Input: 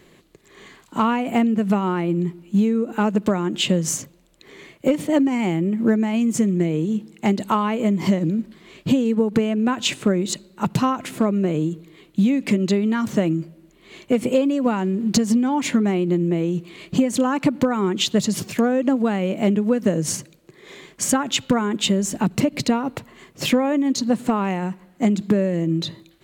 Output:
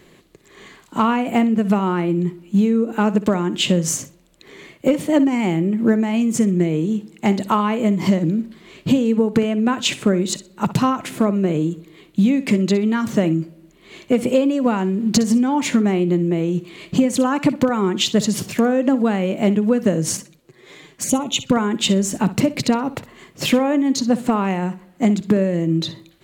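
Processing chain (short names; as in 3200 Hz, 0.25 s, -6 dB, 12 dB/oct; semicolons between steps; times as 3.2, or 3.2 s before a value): flutter echo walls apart 10.6 m, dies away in 0.24 s; 20.17–21.52 envelope flanger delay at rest 10.3 ms, full sweep at -20 dBFS; gain +2 dB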